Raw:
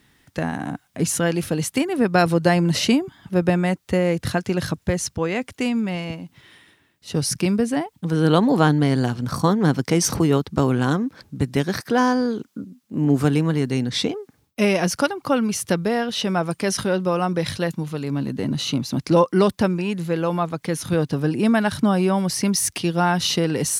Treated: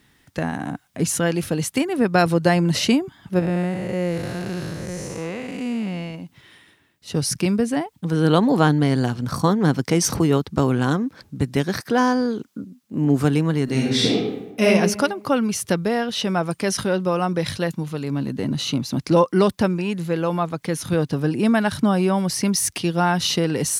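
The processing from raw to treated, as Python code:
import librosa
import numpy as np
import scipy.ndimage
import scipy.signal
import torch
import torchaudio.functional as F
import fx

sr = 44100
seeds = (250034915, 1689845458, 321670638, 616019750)

y = fx.spec_blur(x, sr, span_ms=281.0, at=(3.39, 6.15))
y = fx.reverb_throw(y, sr, start_s=13.64, length_s=1.02, rt60_s=1.0, drr_db=-3.5)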